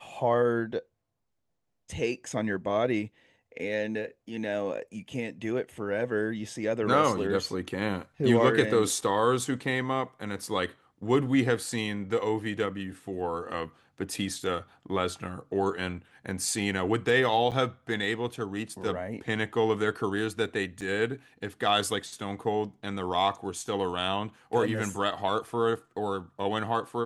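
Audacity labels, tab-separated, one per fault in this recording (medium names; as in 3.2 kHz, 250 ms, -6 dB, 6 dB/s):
17.510000	17.520000	dropout 7.6 ms
20.810000	20.820000	dropout 5.8 ms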